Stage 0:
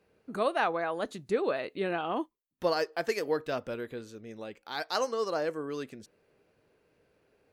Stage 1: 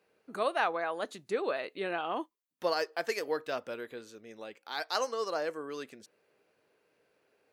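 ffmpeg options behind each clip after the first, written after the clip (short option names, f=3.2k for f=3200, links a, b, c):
-af "highpass=f=490:p=1"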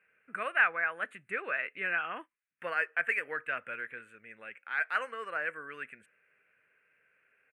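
-af "firequalizer=gain_entry='entry(160,0);entry(320,-9);entry(520,-4);entry(870,-7);entry(1500,14);entry(2500,12);entry(3700,-16);entry(5400,-30);entry(8500,0);entry(13000,-14)':delay=0.05:min_phase=1,volume=-4dB"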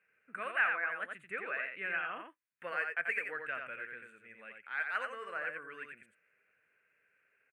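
-af "aecho=1:1:87:0.562,volume=-5dB"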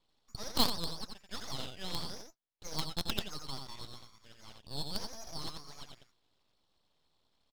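-filter_complex "[0:a]lowpass=f=3.1k:t=q:w=0.5098,lowpass=f=3.1k:t=q:w=0.6013,lowpass=f=3.1k:t=q:w=0.9,lowpass=f=3.1k:t=q:w=2.563,afreqshift=-3700,aeval=exprs='abs(val(0))':c=same,asplit=2[a][b];[b]acrusher=bits=3:mix=0:aa=0.000001,volume=-3.5dB[c];[a][c]amix=inputs=2:normalize=0"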